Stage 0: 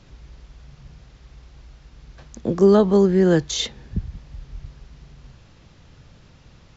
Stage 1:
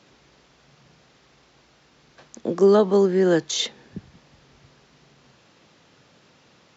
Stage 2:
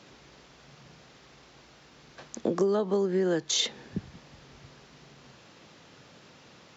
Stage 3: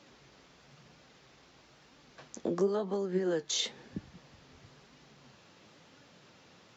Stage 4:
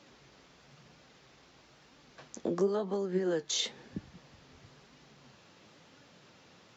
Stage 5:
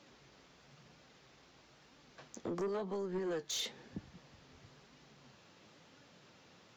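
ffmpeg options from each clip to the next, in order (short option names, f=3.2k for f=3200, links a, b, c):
-af "highpass=260"
-af "acompressor=threshold=-25dB:ratio=12,volume=2.5dB"
-af "flanger=delay=3.4:depth=8.3:regen=55:speed=1:shape=sinusoidal,volume=-1dB"
-af anull
-af "asoftclip=type=tanh:threshold=-29.5dB,volume=-3dB"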